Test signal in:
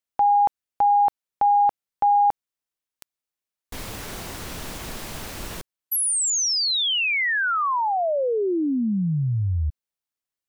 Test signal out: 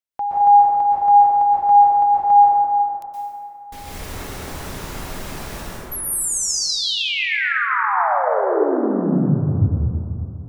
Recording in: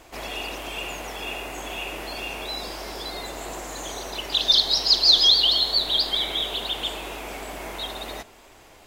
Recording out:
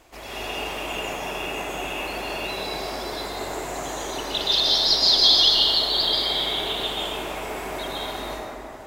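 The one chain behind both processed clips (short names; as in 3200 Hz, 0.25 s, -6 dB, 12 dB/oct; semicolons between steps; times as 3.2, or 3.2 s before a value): plate-style reverb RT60 3 s, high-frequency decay 0.35×, pre-delay 0.11 s, DRR -8 dB; gain -5 dB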